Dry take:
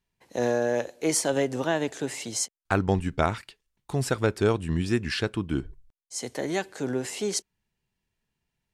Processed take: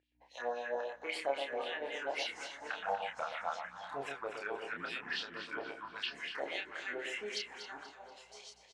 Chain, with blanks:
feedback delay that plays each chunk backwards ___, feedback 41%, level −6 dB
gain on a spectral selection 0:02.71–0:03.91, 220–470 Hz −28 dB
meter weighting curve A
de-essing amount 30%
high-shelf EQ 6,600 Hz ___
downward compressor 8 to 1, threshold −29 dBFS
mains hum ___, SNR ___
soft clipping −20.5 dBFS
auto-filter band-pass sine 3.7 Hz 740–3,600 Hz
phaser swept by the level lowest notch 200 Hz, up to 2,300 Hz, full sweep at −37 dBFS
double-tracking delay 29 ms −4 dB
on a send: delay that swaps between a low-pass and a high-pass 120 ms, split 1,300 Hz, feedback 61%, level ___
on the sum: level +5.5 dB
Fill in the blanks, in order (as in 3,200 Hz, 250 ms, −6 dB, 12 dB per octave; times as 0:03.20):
561 ms, −8 dB, 60 Hz, 15 dB, −6 dB